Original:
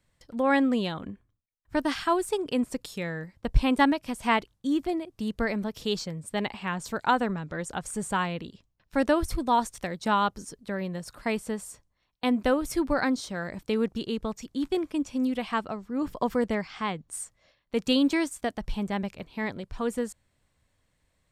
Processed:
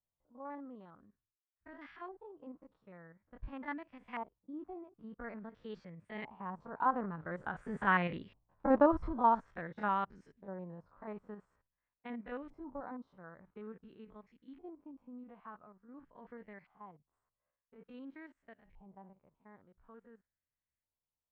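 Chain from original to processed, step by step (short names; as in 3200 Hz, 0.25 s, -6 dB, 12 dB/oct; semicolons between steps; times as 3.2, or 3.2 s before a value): stepped spectrum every 50 ms; Doppler pass-by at 8.34, 12 m/s, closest 6.2 m; LFO low-pass saw up 0.48 Hz 840–2200 Hz; gain -1 dB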